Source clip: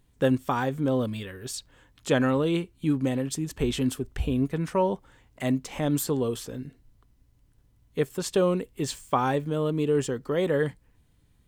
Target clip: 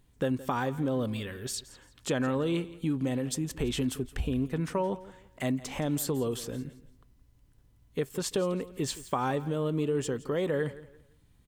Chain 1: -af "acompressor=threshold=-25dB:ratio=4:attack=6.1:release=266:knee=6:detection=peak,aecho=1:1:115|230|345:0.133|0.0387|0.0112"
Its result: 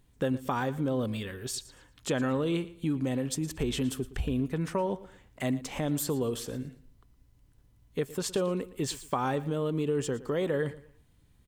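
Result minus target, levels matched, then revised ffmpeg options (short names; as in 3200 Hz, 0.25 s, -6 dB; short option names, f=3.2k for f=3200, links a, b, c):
echo 54 ms early
-af "acompressor=threshold=-25dB:ratio=4:attack=6.1:release=266:knee=6:detection=peak,aecho=1:1:169|338|507:0.133|0.0387|0.0112"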